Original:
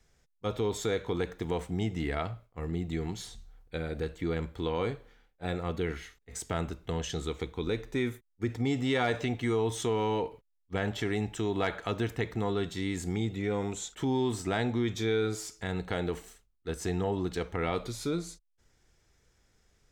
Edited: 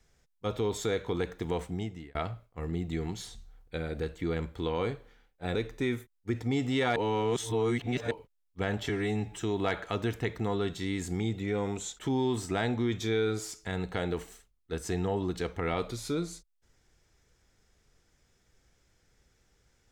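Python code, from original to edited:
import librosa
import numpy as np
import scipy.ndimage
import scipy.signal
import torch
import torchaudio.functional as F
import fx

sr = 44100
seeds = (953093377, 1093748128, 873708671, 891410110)

y = fx.edit(x, sr, fx.fade_out_span(start_s=1.63, length_s=0.52),
    fx.cut(start_s=5.55, length_s=2.14),
    fx.reverse_span(start_s=9.1, length_s=1.15),
    fx.stretch_span(start_s=11.03, length_s=0.36, factor=1.5), tone=tone)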